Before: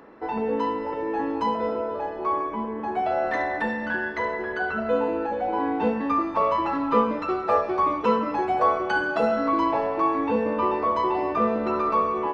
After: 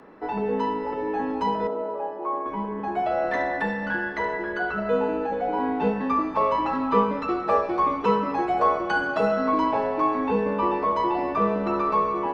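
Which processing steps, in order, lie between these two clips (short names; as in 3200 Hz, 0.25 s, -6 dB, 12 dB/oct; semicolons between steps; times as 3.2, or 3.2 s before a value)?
frequency shift -18 Hz; 1.67–2.46 band-pass 600 Hz, Q 0.85; reverb RT60 3.5 s, pre-delay 88 ms, DRR 16.5 dB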